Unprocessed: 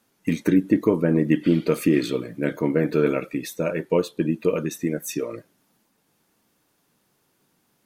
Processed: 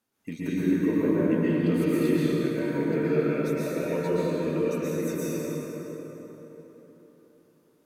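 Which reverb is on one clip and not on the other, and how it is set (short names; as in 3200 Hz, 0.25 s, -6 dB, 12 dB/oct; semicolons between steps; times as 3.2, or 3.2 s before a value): plate-style reverb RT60 4.2 s, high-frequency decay 0.55×, pre-delay 0.105 s, DRR -9.5 dB; gain -13.5 dB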